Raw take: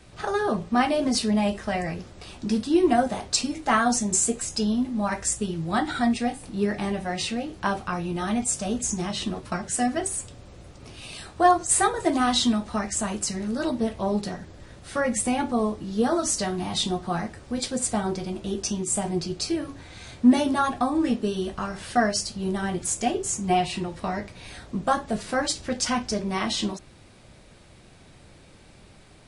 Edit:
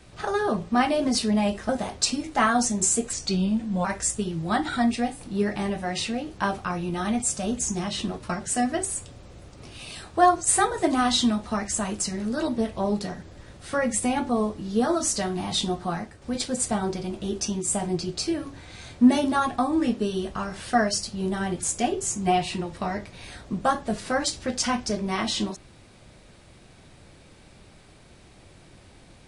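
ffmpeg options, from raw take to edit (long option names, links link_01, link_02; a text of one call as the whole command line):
ffmpeg -i in.wav -filter_complex "[0:a]asplit=5[link_01][link_02][link_03][link_04][link_05];[link_01]atrim=end=1.692[link_06];[link_02]atrim=start=2.998:end=4.444[link_07];[link_03]atrim=start=4.44:end=5.07,asetpts=PTS-STARTPTS,asetrate=38808,aresample=44100[link_08];[link_04]atrim=start=5.066:end=17.44,asetpts=PTS-STARTPTS,afade=type=out:start_time=11.974:duration=0.4:silence=0.446684[link_09];[link_05]atrim=start=17.44,asetpts=PTS-STARTPTS,afade=type=in:duration=0.004:curve=hsin:silence=0.446684[link_10];[link_06][link_07]acrossfade=duration=0.004:curve1=hsin:curve2=hsin[link_11];[link_11][link_08]acrossfade=duration=0.004:curve1=hsin:curve2=hsin[link_12];[link_09][link_10]concat=n=2:v=0:a=1[link_13];[link_12][link_13]acrossfade=duration=0.004:curve1=hsin:curve2=hsin" out.wav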